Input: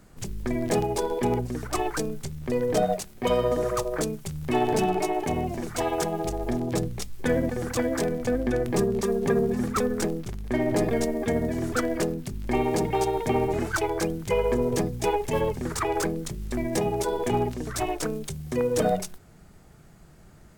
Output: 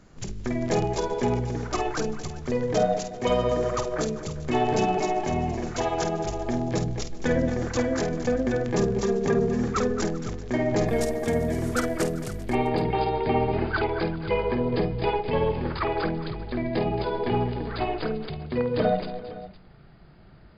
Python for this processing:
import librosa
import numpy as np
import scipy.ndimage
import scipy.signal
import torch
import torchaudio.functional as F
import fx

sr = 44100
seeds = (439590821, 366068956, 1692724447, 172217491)

y = fx.brickwall_lowpass(x, sr, high_hz=fx.steps((0.0, 7500.0), (10.87, 14000.0), (12.43, 5000.0)))
y = fx.echo_multitap(y, sr, ms=(50, 222, 392, 512), db=(-8.5, -12.5, -19.5, -16.5))